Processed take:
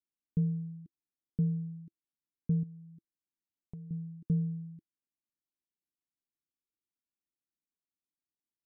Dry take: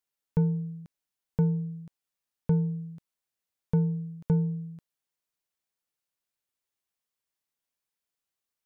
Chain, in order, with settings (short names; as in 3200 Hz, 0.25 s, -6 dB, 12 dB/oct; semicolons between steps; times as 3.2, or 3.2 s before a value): EQ curve 120 Hz 0 dB, 330 Hz +9 dB, 720 Hz -30 dB, 2000 Hz -15 dB; 2.63–3.91 compressor 3:1, threshold -42 dBFS, peak gain reduction 17.5 dB; gain -7.5 dB